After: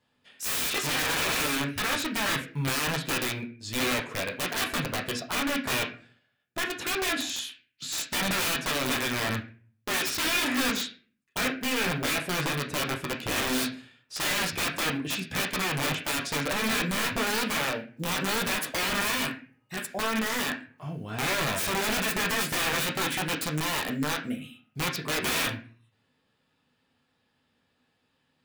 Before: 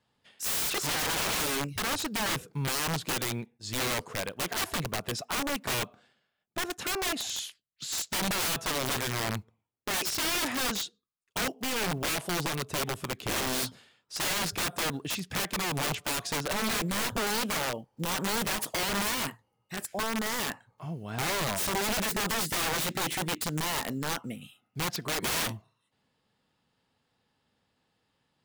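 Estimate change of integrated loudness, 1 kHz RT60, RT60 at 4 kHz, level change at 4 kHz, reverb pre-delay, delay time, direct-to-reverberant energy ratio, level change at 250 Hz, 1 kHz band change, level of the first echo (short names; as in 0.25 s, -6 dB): +2.5 dB, 0.35 s, 0.30 s, +2.5 dB, 12 ms, none, -1.5 dB, +3.5 dB, +1.5 dB, none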